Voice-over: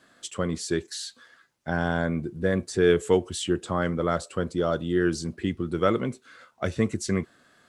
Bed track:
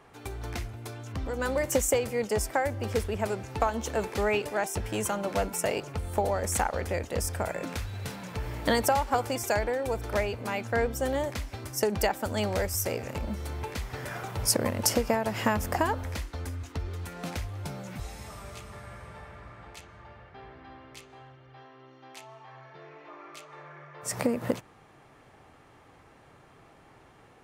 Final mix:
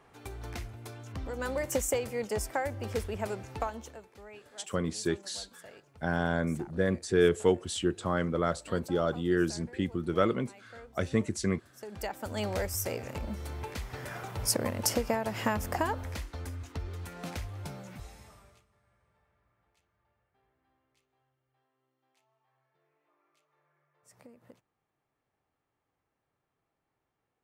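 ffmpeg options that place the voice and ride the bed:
-filter_complex "[0:a]adelay=4350,volume=-3.5dB[a];[1:a]volume=15dB,afade=t=out:st=3.48:d=0.54:silence=0.11885,afade=t=in:st=11.78:d=0.7:silence=0.105925,afade=t=out:st=17.62:d=1.04:silence=0.0630957[b];[a][b]amix=inputs=2:normalize=0"

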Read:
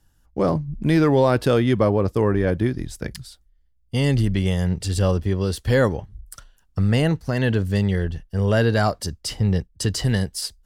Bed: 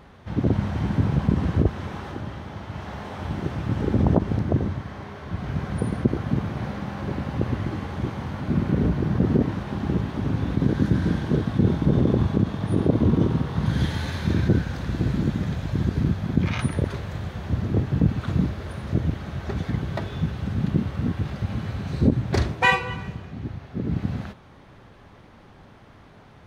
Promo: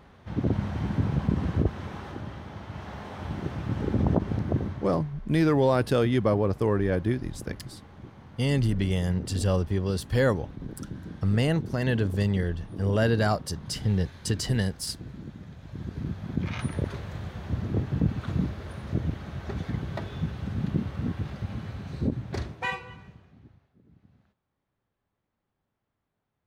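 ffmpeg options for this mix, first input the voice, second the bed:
-filter_complex "[0:a]adelay=4450,volume=-5dB[a];[1:a]volume=8dB,afade=t=out:st=4.56:d=0.64:silence=0.223872,afade=t=in:st=15.56:d=1.28:silence=0.237137,afade=t=out:st=21.11:d=2.67:silence=0.0398107[b];[a][b]amix=inputs=2:normalize=0"

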